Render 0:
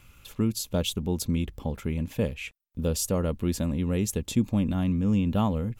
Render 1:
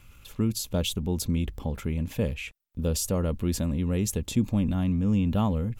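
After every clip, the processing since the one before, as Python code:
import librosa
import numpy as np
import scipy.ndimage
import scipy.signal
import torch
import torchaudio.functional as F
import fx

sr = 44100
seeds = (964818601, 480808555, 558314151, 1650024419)

y = fx.low_shelf(x, sr, hz=100.0, db=5.0)
y = fx.transient(y, sr, attack_db=0, sustain_db=4)
y = F.gain(torch.from_numpy(y), -1.5).numpy()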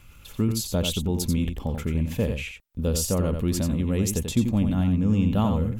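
y = x + 10.0 ** (-6.5 / 20.0) * np.pad(x, (int(88 * sr / 1000.0), 0))[:len(x)]
y = F.gain(torch.from_numpy(y), 2.0).numpy()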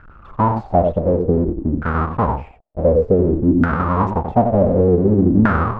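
y = fx.halfwave_hold(x, sr)
y = fx.filter_lfo_lowpass(y, sr, shape='saw_down', hz=0.55, low_hz=270.0, high_hz=1500.0, q=7.9)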